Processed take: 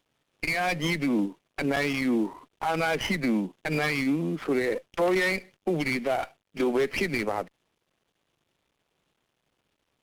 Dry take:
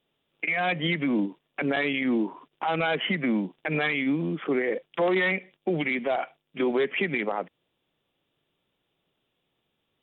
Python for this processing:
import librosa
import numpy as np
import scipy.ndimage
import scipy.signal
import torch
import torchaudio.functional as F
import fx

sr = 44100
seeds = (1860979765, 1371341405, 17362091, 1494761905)

y = fx.cvsd(x, sr, bps=64000)
y = fx.running_max(y, sr, window=5)